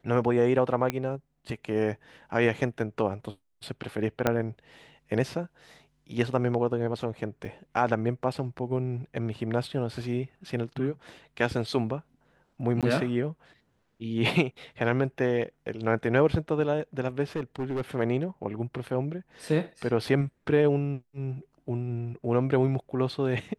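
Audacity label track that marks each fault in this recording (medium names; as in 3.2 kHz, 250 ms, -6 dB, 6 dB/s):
0.900000	0.900000	pop -13 dBFS
4.270000	4.270000	pop -9 dBFS
7.450000	7.450000	dropout 3.5 ms
12.810000	12.830000	dropout 17 ms
17.360000	17.810000	clipped -26.5 dBFS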